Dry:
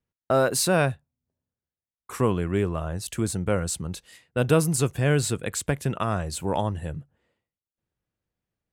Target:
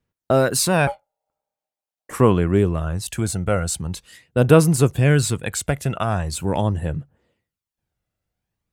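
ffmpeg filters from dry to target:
ffmpeg -i in.wav -filter_complex "[0:a]aphaser=in_gain=1:out_gain=1:delay=1.5:decay=0.39:speed=0.43:type=sinusoidal,asettb=1/sr,asplit=3[link_01][link_02][link_03];[link_01]atrim=end=0.874[link_04];[link_02]atrim=start=0.87:end=2.13,asetpts=PTS-STARTPTS,afade=type=in:duration=0.004:curve=qsin,afade=type=out:start_time=1.256:duration=0.004:curve=qsin,aeval=exprs='val(0)*sin(2*PI*700*n/s)':channel_layout=same[link_05];[link_03]atrim=start=2.126[link_06];[link_04][link_05]acrossfade=duration=0.004:curve1=hsin:curve2=qsin[link_07];[link_07][link_06]acrossfade=duration=0.004:curve1=qsin:curve2=hsin,volume=3.5dB" out.wav

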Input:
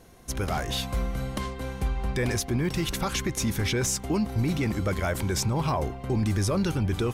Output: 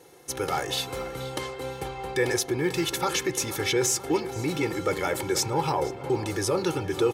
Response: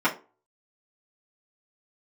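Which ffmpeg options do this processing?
-filter_complex "[0:a]highpass=200,aecho=1:1:2.3:0.84,asplit=2[link_01][link_02];[link_02]adelay=480,lowpass=frequency=3700:poles=1,volume=-14.5dB,asplit=2[link_03][link_04];[link_04]adelay=480,lowpass=frequency=3700:poles=1,volume=0.53,asplit=2[link_05][link_06];[link_06]adelay=480,lowpass=frequency=3700:poles=1,volume=0.53,asplit=2[link_07][link_08];[link_08]adelay=480,lowpass=frequency=3700:poles=1,volume=0.53,asplit=2[link_09][link_10];[link_10]adelay=480,lowpass=frequency=3700:poles=1,volume=0.53[link_11];[link_01][link_03][link_05][link_07][link_09][link_11]amix=inputs=6:normalize=0,asplit=2[link_12][link_13];[1:a]atrim=start_sample=2205,asetrate=26019,aresample=44100[link_14];[link_13][link_14]afir=irnorm=-1:irlink=0,volume=-29dB[link_15];[link_12][link_15]amix=inputs=2:normalize=0"

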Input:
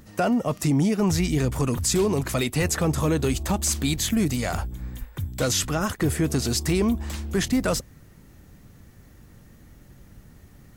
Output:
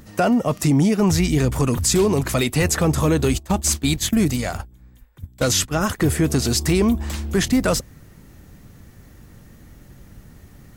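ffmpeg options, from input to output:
ffmpeg -i in.wav -filter_complex "[0:a]asplit=3[link_01][link_02][link_03];[link_01]afade=type=out:start_time=3.26:duration=0.02[link_04];[link_02]agate=range=-18dB:threshold=-25dB:ratio=16:detection=peak,afade=type=in:start_time=3.26:duration=0.02,afade=type=out:start_time=5.73:duration=0.02[link_05];[link_03]afade=type=in:start_time=5.73:duration=0.02[link_06];[link_04][link_05][link_06]amix=inputs=3:normalize=0,volume=4.5dB" out.wav

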